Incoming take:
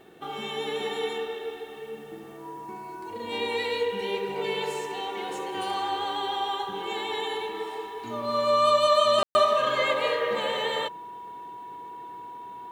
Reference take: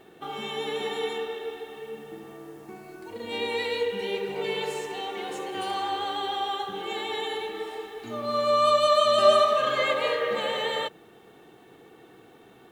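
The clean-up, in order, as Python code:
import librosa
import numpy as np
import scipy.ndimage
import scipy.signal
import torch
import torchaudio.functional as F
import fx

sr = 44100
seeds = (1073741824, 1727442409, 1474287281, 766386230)

y = fx.notch(x, sr, hz=970.0, q=30.0)
y = fx.fix_ambience(y, sr, seeds[0], print_start_s=0.0, print_end_s=0.5, start_s=9.23, end_s=9.35)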